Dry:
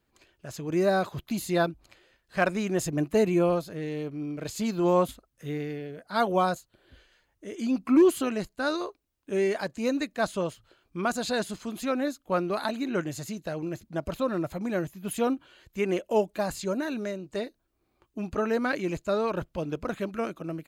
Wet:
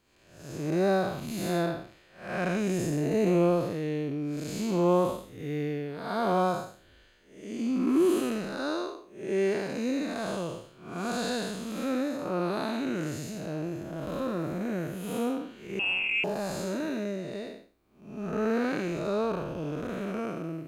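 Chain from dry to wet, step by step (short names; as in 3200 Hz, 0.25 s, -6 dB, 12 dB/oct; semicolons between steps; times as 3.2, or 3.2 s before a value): time blur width 0.247 s; 15.79–16.24 inverted band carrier 3000 Hz; added harmonics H 5 -35 dB, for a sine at -16.5 dBFS; gain +2.5 dB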